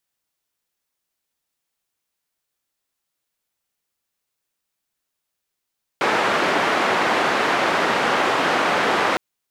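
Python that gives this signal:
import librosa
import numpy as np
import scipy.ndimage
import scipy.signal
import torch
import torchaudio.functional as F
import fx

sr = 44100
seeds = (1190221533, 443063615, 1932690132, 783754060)

y = fx.band_noise(sr, seeds[0], length_s=3.16, low_hz=270.0, high_hz=1500.0, level_db=-19.5)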